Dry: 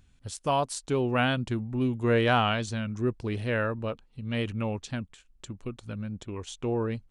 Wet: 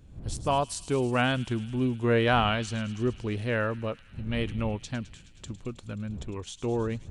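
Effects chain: wind noise 110 Hz -43 dBFS; feedback echo behind a high-pass 106 ms, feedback 79%, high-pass 3.1 kHz, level -13 dB

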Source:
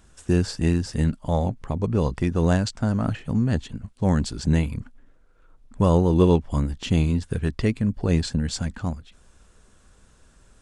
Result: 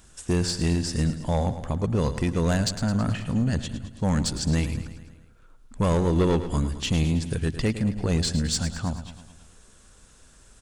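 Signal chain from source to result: treble shelf 3.1 kHz +8 dB; saturation -16.5 dBFS, distortion -12 dB; on a send: feedback delay 108 ms, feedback 58%, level -12 dB

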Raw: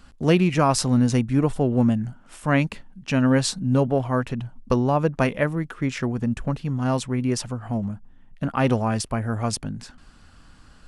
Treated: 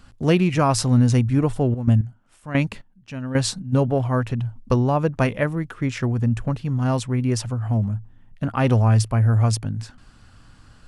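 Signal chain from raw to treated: peaking EQ 110 Hz +13 dB 0.28 oct; 1.59–3.72 s: trance gate "x....xx....xx." 112 bpm -12 dB

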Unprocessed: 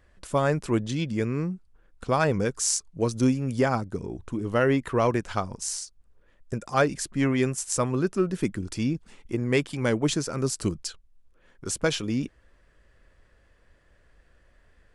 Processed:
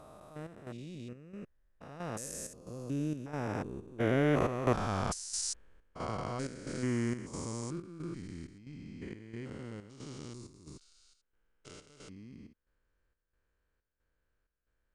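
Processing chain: spectrogram pixelated in time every 400 ms; Doppler pass-by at 5.12 s, 33 m/s, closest 19 m; square tremolo 1.5 Hz, depth 65%, duty 70%; trim +4.5 dB

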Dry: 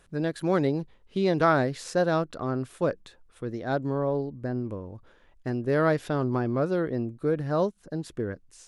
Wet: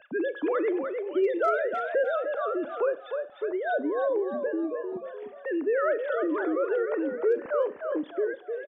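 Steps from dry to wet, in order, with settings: formants replaced by sine waves; in parallel at +2.5 dB: compression 6:1, threshold -31 dBFS, peak gain reduction 13.5 dB; on the sum: hard clipper -11.5 dBFS, distortion -46 dB; on a send: frequency-shifting echo 303 ms, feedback 32%, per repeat +45 Hz, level -8 dB; on the sum: Schroeder reverb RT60 0.37 s, combs from 26 ms, DRR 14 dB; three bands compressed up and down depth 40%; trim -5 dB

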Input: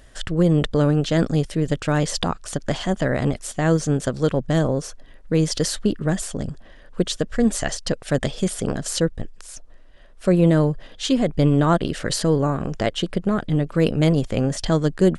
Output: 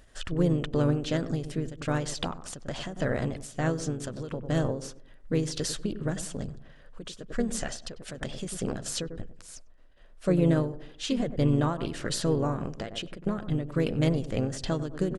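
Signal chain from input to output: filtered feedback delay 96 ms, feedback 40%, low-pass 1.2 kHz, level -14 dB; harmony voices -3 st -8 dB; endings held to a fixed fall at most 100 dB/s; trim -7.5 dB

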